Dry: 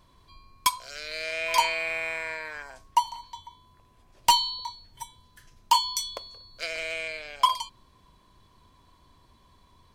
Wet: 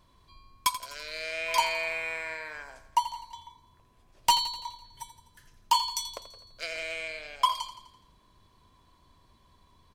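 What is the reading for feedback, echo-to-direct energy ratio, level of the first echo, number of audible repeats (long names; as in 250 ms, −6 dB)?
54%, −11.5 dB, −13.0 dB, 5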